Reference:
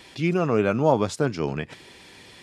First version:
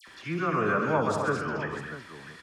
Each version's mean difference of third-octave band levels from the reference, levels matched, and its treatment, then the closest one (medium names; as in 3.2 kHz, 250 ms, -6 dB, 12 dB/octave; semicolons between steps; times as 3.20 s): 7.5 dB: high-order bell 1.4 kHz +11.5 dB 1 oct; upward compressor, threshold -37 dBFS; phase dispersion lows, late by 77 ms, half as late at 1.8 kHz; on a send: multi-tap echo 66/134/209/252/647 ms -10/-7.5/-8/-8/-12.5 dB; on the sum: trim -8.5 dB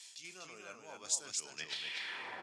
12.5 dB: reverse; compression 5:1, threshold -30 dBFS, peak gain reduction 15 dB; reverse; band-pass sweep 7.2 kHz -> 690 Hz, 1.52–2.42 s; loudspeakers at several distances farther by 11 m -11 dB, 84 m -4 dB; three bands expanded up and down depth 40%; trim +11 dB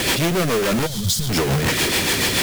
17.5 dB: one-bit comparator; time-frequency box 0.87–1.30 s, 220–3000 Hz -18 dB; rotary cabinet horn 7 Hz; modulation noise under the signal 18 dB; trim +7.5 dB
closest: first